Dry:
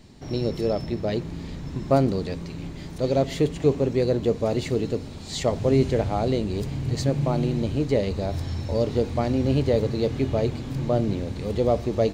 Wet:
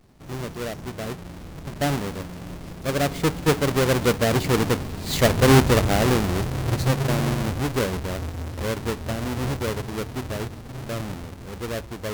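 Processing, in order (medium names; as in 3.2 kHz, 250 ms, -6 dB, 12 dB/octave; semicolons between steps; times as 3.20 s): square wave that keeps the level; Doppler pass-by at 5.24 s, 18 m/s, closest 23 m; trim +1.5 dB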